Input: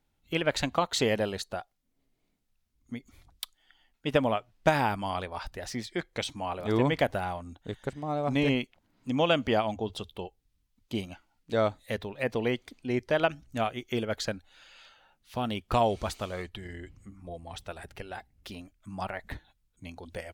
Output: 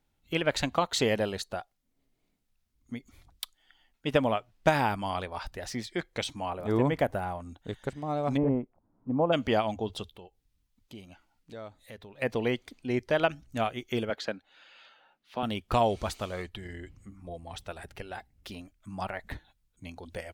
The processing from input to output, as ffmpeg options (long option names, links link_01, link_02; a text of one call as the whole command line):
ffmpeg -i in.wav -filter_complex "[0:a]asettb=1/sr,asplit=3[link_01][link_02][link_03];[link_01]atrim=end=6.504[link_04];[link_02]atrim=start=6.5:end=7.4,asetpts=PTS-STARTPTS,afade=type=in:duration=0.004:curve=qsin,afade=type=out:start_time=0.896:duration=0.004:curve=qsin,equalizer=frequency=3900:width=0.69:gain=-9[link_05];[link_03]atrim=start=7.396[link_06];[link_04][link_05]acrossfade=duration=0.004:curve1=hsin:curve2=qsin[link_07];[link_07][link_06]acrossfade=duration=0.004:curve1=qsin:curve2=hsin,asplit=3[link_08][link_09][link_10];[link_08]afade=type=out:start_time=8.36:duration=0.02[link_11];[link_09]lowpass=frequency=1100:width=0.5412,lowpass=frequency=1100:width=1.3066,afade=type=in:start_time=8.36:duration=0.02,afade=type=out:start_time=9.32:duration=0.02[link_12];[link_10]afade=type=in:start_time=9.32:duration=0.02[link_13];[link_11][link_12][link_13]amix=inputs=3:normalize=0,asettb=1/sr,asplit=3[link_14][link_15][link_16];[link_14]atrim=end=10.094[link_17];[link_15]atrim=start=10.09:end=12.22,asetpts=PTS-STARTPTS,afade=type=in:duration=0.004:curve=qsin,afade=type=out:start_time=2.126:duration=0.004:curve=qsin,acompressor=threshold=-53dB:ratio=2:attack=3.2:release=140:knee=1:detection=peak[link_18];[link_16]atrim=start=12.216[link_19];[link_17][link_18]acrossfade=duration=0.004:curve1=hsin:curve2=qsin[link_20];[link_20][link_19]acrossfade=duration=0.004:curve1=qsin:curve2=hsin,asettb=1/sr,asplit=3[link_21][link_22][link_23];[link_21]atrim=end=14.104[link_24];[link_22]atrim=start=14.1:end=15.43,asetpts=PTS-STARTPTS,afade=type=in:duration=0.004:curve=qsin,afade=type=out:start_time=1.326:duration=0.004:curve=qsin,acrossover=split=180 4500:gain=0.0891 1 0.2[link_25][link_26][link_27];[link_25][link_26][link_27]amix=inputs=3:normalize=0[link_28];[link_23]atrim=start=15.426[link_29];[link_24][link_28]acrossfade=duration=0.004:curve1=hsin:curve2=qsin[link_30];[link_30][link_29]acrossfade=duration=0.004:curve1=qsin:curve2=hsin" out.wav